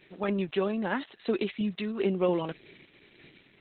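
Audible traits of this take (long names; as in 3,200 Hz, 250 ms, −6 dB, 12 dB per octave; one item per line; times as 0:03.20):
sample-and-hold tremolo
a quantiser's noise floor 10 bits, dither none
Opus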